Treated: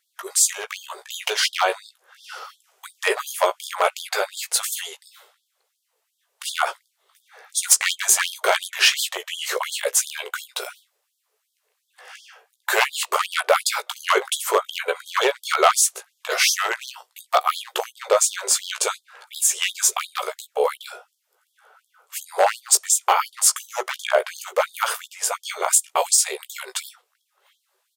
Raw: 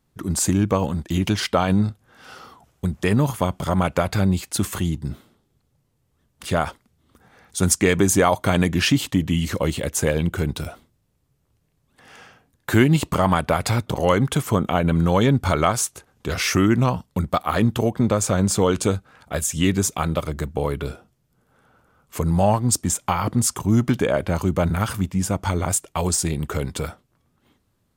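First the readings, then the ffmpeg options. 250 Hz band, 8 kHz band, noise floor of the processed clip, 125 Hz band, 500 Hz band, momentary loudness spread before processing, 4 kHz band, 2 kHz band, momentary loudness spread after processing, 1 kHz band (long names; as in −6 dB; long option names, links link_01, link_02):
below −20 dB, +6.0 dB, −74 dBFS, below −40 dB, −2.0 dB, 9 LU, +6.0 dB, +4.0 dB, 15 LU, +1.5 dB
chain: -filter_complex "[0:a]asplit=2[link_01][link_02];[link_02]adelay=16,volume=-6dB[link_03];[link_01][link_03]amix=inputs=2:normalize=0,aeval=exprs='0.335*(abs(mod(val(0)/0.335+3,4)-2)-1)':channel_layout=same,afftfilt=real='re*gte(b*sr/1024,350*pow(3200/350,0.5+0.5*sin(2*PI*2.8*pts/sr)))':imag='im*gte(b*sr/1024,350*pow(3200/350,0.5+0.5*sin(2*PI*2.8*pts/sr)))':win_size=1024:overlap=0.75,volume=5dB"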